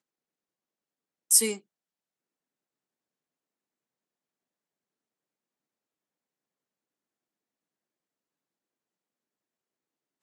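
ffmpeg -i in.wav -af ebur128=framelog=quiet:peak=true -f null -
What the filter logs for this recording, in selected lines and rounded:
Integrated loudness:
  I:         -22.1 LUFS
  Threshold: -32.9 LUFS
Loudness range:
  LRA:        11.0 LU
  Threshold: -50.4 LUFS
  LRA low:   -40.9 LUFS
  LRA high:  -29.9 LUFS
True peak:
  Peak:       -5.7 dBFS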